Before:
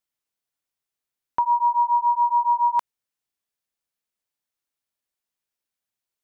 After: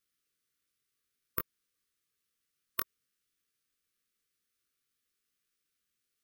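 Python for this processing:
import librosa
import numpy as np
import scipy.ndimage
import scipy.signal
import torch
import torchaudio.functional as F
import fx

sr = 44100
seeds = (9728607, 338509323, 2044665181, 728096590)

y = fx.brickwall_bandstop(x, sr, low_hz=530.0, high_hz=1100.0)
y = fx.chorus_voices(y, sr, voices=2, hz=0.86, base_ms=20, depth_ms=4.1, mix_pct=35)
y = (np.kron(scipy.signal.resample_poly(y, 1, 3), np.eye(3)[0]) * 3)[:len(y)]
y = F.gain(torch.from_numpy(y), 6.5).numpy()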